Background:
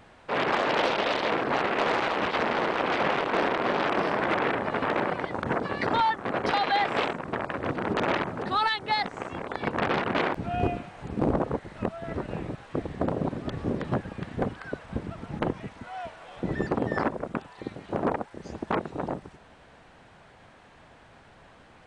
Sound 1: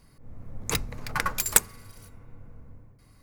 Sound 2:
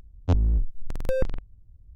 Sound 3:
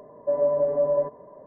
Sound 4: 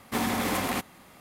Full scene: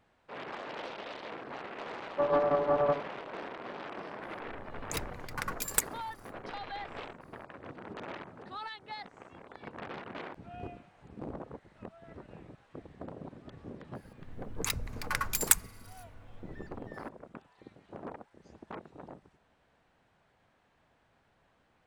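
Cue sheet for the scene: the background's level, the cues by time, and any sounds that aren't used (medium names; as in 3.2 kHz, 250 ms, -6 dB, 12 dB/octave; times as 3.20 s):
background -16.5 dB
1.91 s: add 3 -4.5 dB + loudspeaker Doppler distortion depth 0.56 ms
4.22 s: add 1 -9 dB
13.87 s: add 1 -4 dB + three bands offset in time mids, highs, lows 80/140 ms, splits 160/720 Hz
not used: 2, 4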